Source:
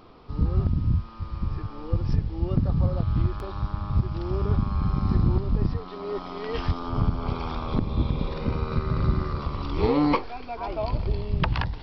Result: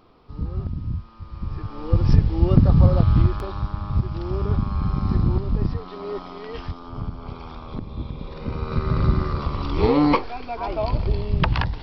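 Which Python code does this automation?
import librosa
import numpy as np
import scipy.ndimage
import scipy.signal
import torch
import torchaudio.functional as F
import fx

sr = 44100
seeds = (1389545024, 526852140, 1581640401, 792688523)

y = fx.gain(x, sr, db=fx.line((1.25, -4.5), (2.08, 8.5), (3.04, 8.5), (3.7, 1.5), (6.07, 1.5), (6.77, -6.5), (8.21, -6.5), (8.88, 4.0)))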